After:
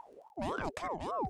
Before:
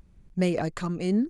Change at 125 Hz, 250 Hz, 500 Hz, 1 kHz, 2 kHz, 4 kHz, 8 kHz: −16.5, −17.0, −9.0, +2.5, −4.5, −9.0, −9.0 decibels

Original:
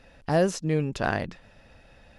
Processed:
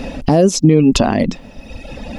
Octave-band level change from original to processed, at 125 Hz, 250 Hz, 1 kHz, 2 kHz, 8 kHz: +13.0, +17.0, +9.5, +4.0, +16.5 decibels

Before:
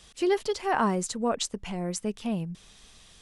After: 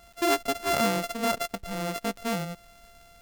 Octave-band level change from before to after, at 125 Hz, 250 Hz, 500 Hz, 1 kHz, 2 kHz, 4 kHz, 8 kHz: −1.5, −1.5, −0.5, +1.0, +4.0, +3.5, −0.5 decibels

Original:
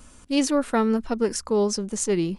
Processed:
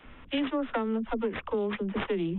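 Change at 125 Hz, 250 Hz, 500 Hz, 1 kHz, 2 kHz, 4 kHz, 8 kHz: can't be measured, −7.0 dB, −7.0 dB, −5.5 dB, −1.5 dB, −7.0 dB, below −40 dB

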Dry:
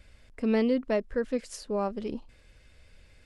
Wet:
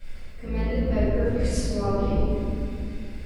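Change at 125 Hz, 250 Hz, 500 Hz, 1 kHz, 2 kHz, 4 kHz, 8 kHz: +18.0, +2.5, +2.0, +3.0, +1.5, +4.5, +7.0 decibels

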